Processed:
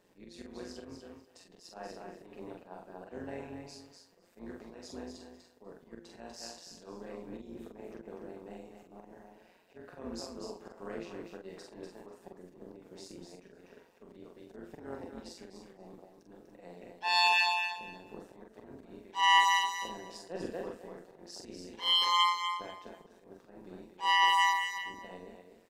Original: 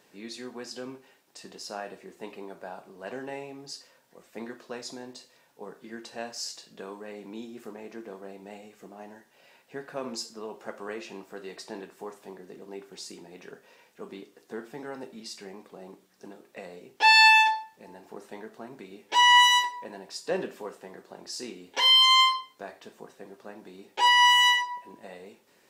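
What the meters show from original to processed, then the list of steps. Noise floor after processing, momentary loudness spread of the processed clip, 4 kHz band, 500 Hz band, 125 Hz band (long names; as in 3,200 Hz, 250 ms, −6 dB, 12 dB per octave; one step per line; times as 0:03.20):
−63 dBFS, 24 LU, −9.5 dB, −6.0 dB, −2.0 dB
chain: tilt shelving filter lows +4.5 dB, about 760 Hz
feedback echo with a high-pass in the loop 245 ms, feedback 19%, high-pass 240 Hz, level −6 dB
volume swells 129 ms
double-tracking delay 44 ms −3 dB
amplitude modulation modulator 180 Hz, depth 55%
level −4.5 dB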